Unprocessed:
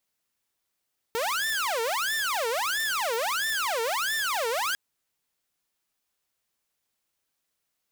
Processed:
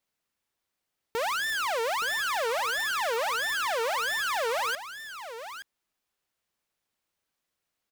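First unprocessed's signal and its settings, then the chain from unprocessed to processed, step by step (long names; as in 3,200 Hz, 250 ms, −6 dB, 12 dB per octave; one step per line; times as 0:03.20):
siren wail 449–1,790 Hz 1.5 per second saw −23 dBFS 3.60 s
high-shelf EQ 4,600 Hz −7 dB
single-tap delay 871 ms −11.5 dB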